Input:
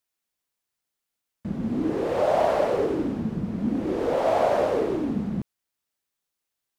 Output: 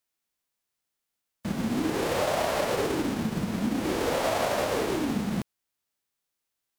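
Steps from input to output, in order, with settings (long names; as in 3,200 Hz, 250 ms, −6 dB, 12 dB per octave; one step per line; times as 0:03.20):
spectral envelope flattened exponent 0.6
downward compressor, threshold −23 dBFS, peak gain reduction 6.5 dB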